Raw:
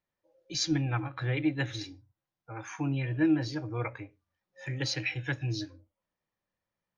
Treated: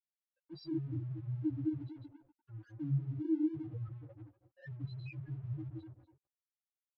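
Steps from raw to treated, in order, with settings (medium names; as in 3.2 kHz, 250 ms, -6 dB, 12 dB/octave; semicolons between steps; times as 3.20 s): backward echo that repeats 121 ms, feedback 46%, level -1.5 dB; de-hum 129.6 Hz, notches 7; in parallel at 0 dB: compression, threshold -41 dBFS, peak gain reduction 19 dB; on the sum: loudest bins only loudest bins 2; crossover distortion -55 dBFS; distance through air 240 m; three-phase chorus; trim -2 dB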